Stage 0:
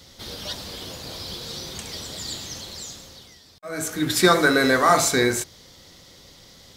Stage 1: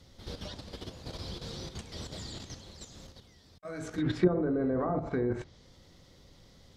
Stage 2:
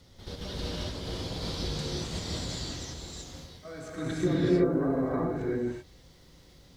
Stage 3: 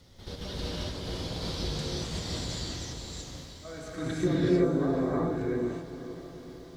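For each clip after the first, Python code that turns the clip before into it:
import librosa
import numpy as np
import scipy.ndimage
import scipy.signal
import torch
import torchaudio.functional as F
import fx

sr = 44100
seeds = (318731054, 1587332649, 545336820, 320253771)

y1 = fx.env_lowpass_down(x, sr, base_hz=510.0, full_db=-14.0)
y1 = fx.level_steps(y1, sr, step_db=9)
y1 = fx.tilt_eq(y1, sr, slope=-2.0)
y1 = y1 * 10.0 ** (-5.0 / 20.0)
y2 = fx.rider(y1, sr, range_db=4, speed_s=2.0)
y2 = fx.dmg_crackle(y2, sr, seeds[0], per_s=230.0, level_db=-54.0)
y2 = fx.rev_gated(y2, sr, seeds[1], gate_ms=410, shape='rising', drr_db=-6.5)
y2 = y2 * 10.0 ** (-4.0 / 20.0)
y3 = fx.echo_diffused(y2, sr, ms=498, feedback_pct=57, wet_db=-12.5)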